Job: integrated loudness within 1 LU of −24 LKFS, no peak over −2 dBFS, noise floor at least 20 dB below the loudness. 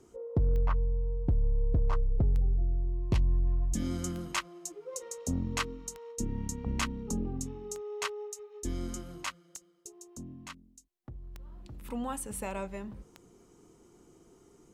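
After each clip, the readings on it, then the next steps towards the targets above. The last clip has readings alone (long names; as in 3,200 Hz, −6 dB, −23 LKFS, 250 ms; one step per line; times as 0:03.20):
number of clicks 8; integrated loudness −34.0 LKFS; sample peak −19.5 dBFS; target loudness −24.0 LKFS
→ click removal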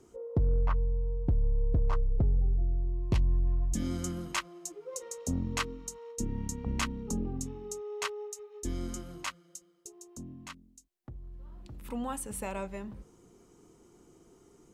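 number of clicks 0; integrated loudness −34.0 LKFS; sample peak −20.0 dBFS; target loudness −24.0 LKFS
→ level +10 dB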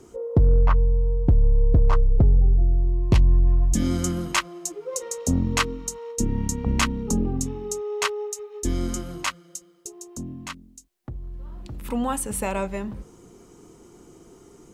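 integrated loudness −24.0 LKFS; sample peak −10.0 dBFS; background noise floor −52 dBFS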